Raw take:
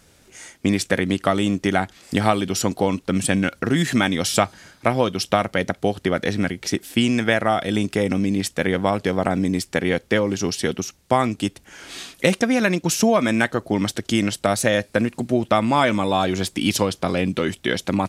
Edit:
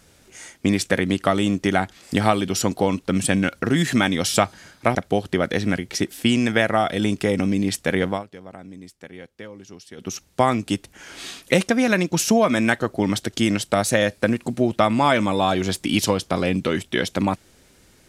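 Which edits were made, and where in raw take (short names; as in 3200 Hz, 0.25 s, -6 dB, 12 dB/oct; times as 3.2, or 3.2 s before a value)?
4.95–5.67 cut
8.78–10.87 dip -19 dB, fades 0.18 s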